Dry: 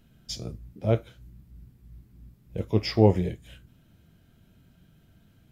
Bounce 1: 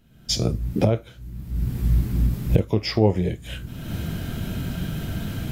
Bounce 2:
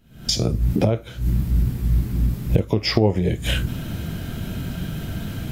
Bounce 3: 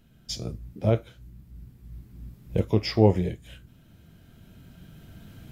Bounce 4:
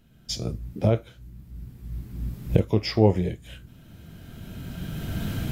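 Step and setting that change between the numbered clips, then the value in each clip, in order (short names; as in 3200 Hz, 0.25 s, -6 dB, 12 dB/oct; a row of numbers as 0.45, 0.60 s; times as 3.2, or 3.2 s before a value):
recorder AGC, rising by: 36, 87, 5.7, 14 dB/s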